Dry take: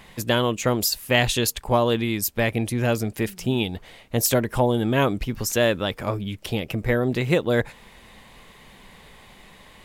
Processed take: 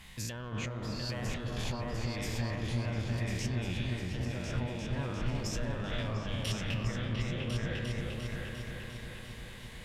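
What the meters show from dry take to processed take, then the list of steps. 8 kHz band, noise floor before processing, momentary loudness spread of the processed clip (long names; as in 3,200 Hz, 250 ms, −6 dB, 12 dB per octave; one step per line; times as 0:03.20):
−15.5 dB, −50 dBFS, 7 LU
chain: peak hold with a decay on every bin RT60 0.91 s
treble cut that deepens with the level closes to 1,300 Hz, closed at −15 dBFS
in parallel at −8 dB: hard clipping −22.5 dBFS, distortion −6 dB
on the sum: low-shelf EQ 250 Hz +9 dB
brickwall limiter −15 dBFS, peak gain reduction 13.5 dB
guitar amp tone stack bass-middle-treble 5-5-5
on a send: echo whose low-pass opens from repeat to repeat 350 ms, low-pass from 750 Hz, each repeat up 2 octaves, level 0 dB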